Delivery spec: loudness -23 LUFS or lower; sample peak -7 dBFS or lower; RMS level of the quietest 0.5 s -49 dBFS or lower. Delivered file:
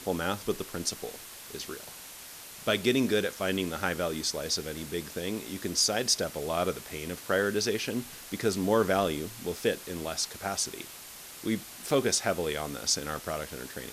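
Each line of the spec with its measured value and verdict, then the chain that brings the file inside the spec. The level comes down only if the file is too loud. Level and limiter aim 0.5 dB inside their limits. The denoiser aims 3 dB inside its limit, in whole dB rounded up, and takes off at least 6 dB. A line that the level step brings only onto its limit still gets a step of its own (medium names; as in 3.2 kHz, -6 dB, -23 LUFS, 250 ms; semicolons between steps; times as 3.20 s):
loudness -30.0 LUFS: pass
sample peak -12.0 dBFS: pass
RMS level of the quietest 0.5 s -46 dBFS: fail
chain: noise reduction 6 dB, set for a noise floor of -46 dBFS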